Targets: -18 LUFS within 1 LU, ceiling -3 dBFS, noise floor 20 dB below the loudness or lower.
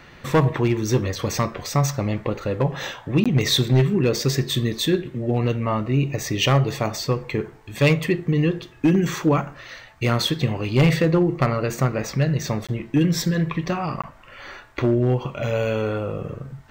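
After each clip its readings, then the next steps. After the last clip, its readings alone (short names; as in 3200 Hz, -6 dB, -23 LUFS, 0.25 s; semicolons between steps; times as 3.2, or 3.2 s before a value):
clipped 0.7%; flat tops at -11.0 dBFS; dropouts 3; longest dropout 16 ms; loudness -22.0 LUFS; peak -11.0 dBFS; loudness target -18.0 LUFS
-> clip repair -11 dBFS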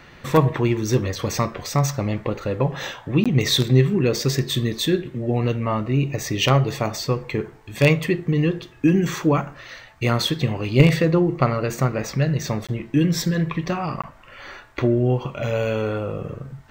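clipped 0.0%; dropouts 3; longest dropout 16 ms
-> interpolate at 3.24/12.67/14.02, 16 ms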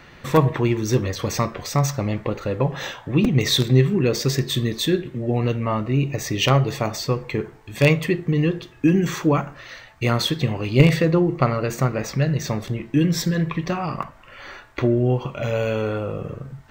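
dropouts 0; loudness -21.5 LUFS; peak -2.0 dBFS; loudness target -18.0 LUFS
-> gain +3.5 dB; limiter -3 dBFS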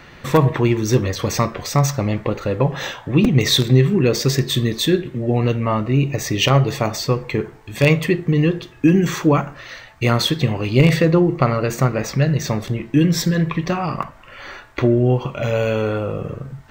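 loudness -18.5 LUFS; peak -3.0 dBFS; noise floor -43 dBFS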